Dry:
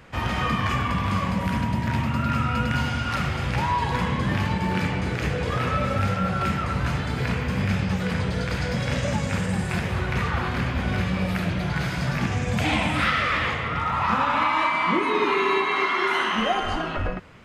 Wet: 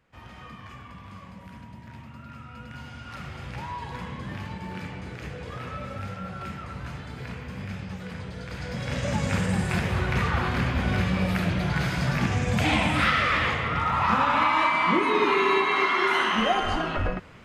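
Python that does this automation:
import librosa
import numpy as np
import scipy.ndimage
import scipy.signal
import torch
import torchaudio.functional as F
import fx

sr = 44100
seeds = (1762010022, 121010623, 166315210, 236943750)

y = fx.gain(x, sr, db=fx.line((2.46, -19.5), (3.39, -11.5), (8.39, -11.5), (9.28, 0.0)))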